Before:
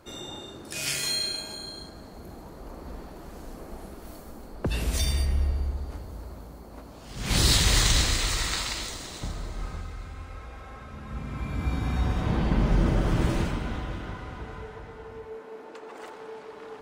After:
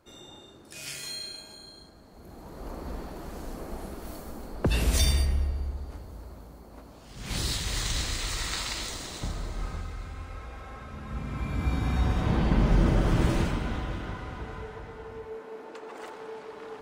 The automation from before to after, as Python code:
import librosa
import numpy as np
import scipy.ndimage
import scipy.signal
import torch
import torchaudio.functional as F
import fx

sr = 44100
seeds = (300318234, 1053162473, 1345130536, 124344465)

y = fx.gain(x, sr, db=fx.line((2.05, -9.0), (2.66, 3.0), (5.06, 3.0), (5.5, -3.5), (6.92, -3.5), (7.61, -10.5), (8.97, 0.5)))